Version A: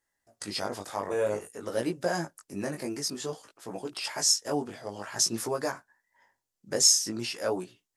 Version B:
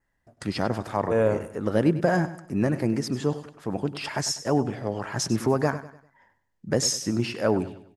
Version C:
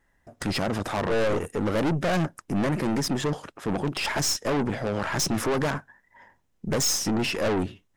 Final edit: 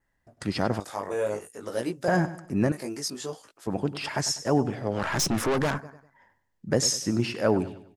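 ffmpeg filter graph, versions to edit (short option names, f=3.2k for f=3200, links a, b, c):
-filter_complex "[0:a]asplit=2[a][b];[1:a]asplit=4[c][d][e][f];[c]atrim=end=0.802[g];[a]atrim=start=0.798:end=2.082[h];[d]atrim=start=2.078:end=2.722[i];[b]atrim=start=2.718:end=3.672[j];[e]atrim=start=3.668:end=5[k];[2:a]atrim=start=4.9:end=5.85[l];[f]atrim=start=5.75[m];[g][h]acrossfade=d=0.004:c1=hsin:c2=hsin[n];[n][i]acrossfade=d=0.004:c1=hsin:c2=hsin[o];[o][j]acrossfade=d=0.004:c1=hsin:c2=hsin[p];[p][k]acrossfade=d=0.004:c1=hsin:c2=hsin[q];[q][l]acrossfade=d=0.1:c1=tri:c2=tri[r];[r][m]acrossfade=d=0.1:c1=tri:c2=tri"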